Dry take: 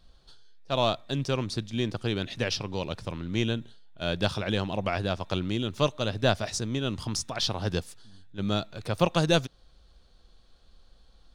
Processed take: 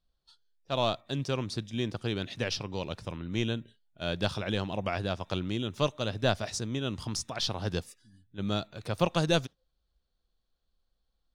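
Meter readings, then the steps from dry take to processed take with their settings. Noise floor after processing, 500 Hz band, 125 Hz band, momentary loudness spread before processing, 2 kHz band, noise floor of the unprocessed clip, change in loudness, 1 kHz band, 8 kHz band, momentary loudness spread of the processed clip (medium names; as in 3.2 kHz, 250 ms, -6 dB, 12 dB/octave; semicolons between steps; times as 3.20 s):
-79 dBFS, -3.0 dB, -3.0 dB, 8 LU, -3.0 dB, -59 dBFS, -3.0 dB, -3.0 dB, -3.0 dB, 8 LU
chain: spectral noise reduction 18 dB; trim -3 dB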